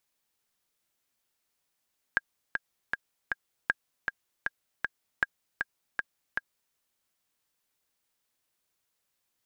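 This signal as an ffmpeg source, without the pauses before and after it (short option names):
-f lavfi -i "aevalsrc='pow(10,(-10.5-5*gte(mod(t,4*60/157),60/157))/20)*sin(2*PI*1620*mod(t,60/157))*exp(-6.91*mod(t,60/157)/0.03)':d=4.58:s=44100"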